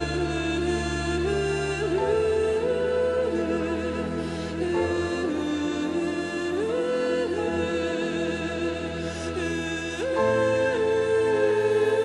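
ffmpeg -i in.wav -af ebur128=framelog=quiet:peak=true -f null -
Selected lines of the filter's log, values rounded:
Integrated loudness:
  I:         -25.6 LUFS
  Threshold: -35.6 LUFS
Loudness range:
  LRA:         2.4 LU
  Threshold: -46.2 LUFS
  LRA low:   -27.3 LUFS
  LRA high:  -25.0 LUFS
True peak:
  Peak:      -11.8 dBFS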